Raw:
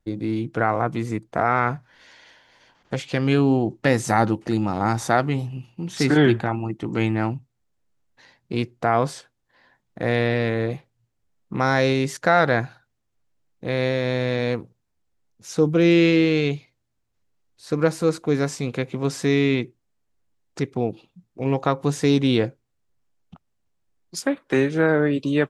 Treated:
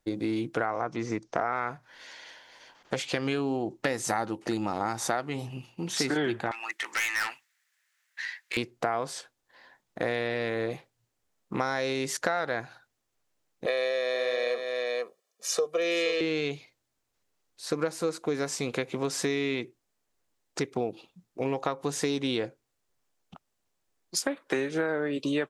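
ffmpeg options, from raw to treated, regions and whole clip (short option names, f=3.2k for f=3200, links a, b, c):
-filter_complex "[0:a]asettb=1/sr,asplit=3[a][b][c];[a]atrim=end=0.654[d];[b]atrim=start=0.65:end=1.53,asetpts=PTS-STARTPTS,afade=t=in:d=0.004:c=qsin,afade=t=out:st=0.876:d=0.004:c=qsin,lowpass=f=5.8k:t=q:w=4.8,acrossover=split=2500[e][f];[f]acompressor=threshold=-51dB:ratio=4:attack=1:release=60[g];[e][g]amix=inputs=2:normalize=0[h];[c]atrim=start=1.526[i];[d][h]acrossfade=d=0.004:c1=hsin:c2=qsin[j];[j][i]acrossfade=d=0.004:c1=qsin:c2=hsin,asettb=1/sr,asplit=3[k][l][m];[k]atrim=end=6.514[n];[l]atrim=start=6.51:end=8.57,asetpts=PTS-STARTPTS,afade=t=in:d=0.004:c=qsin,afade=t=out:st=2.056:d=0.004:c=qsin,acontrast=69,highpass=f=1.8k:t=q:w=3.7,aeval=exprs='(tanh(17.8*val(0)+0.15)-tanh(0.15))/17.8':c=same[o];[m]atrim=start=8.566[p];[n][o]acrossfade=d=0.004:c1=hsin:c2=qsin[q];[q][p]acrossfade=d=0.004:c1=qsin:c2=hsin,asettb=1/sr,asplit=3[r][s][t];[r]atrim=end=13.664[u];[s]atrim=start=13.66:end=16.21,asetpts=PTS-STARTPTS,afade=t=in:d=0.004:c=qsin,afade=t=out:st=2.546:d=0.004:c=qsin,highpass=f=290:w=0.5412,highpass=f=290:w=1.3066,aecho=1:1:1.7:0.98,atrim=end_sample=112455,aecho=1:1:472:0.335,atrim=end_sample=112455[v];[t]atrim=start=16.206[w];[u][v]acrossfade=d=0.004:c1=hsin:c2=qsin[x];[x][w]acrossfade=d=0.004:c1=qsin:c2=hsin,bass=f=250:g=-11,treble=f=4k:g=3,acompressor=threshold=-28dB:ratio=6,volume=2.5dB"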